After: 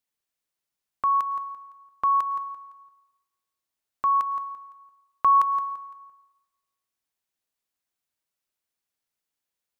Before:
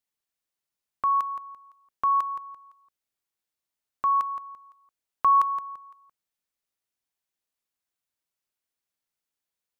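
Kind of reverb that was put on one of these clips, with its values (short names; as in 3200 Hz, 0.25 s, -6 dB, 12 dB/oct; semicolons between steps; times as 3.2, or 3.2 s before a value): plate-style reverb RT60 1.2 s, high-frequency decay 0.85×, pre-delay 95 ms, DRR 14.5 dB; gain +1 dB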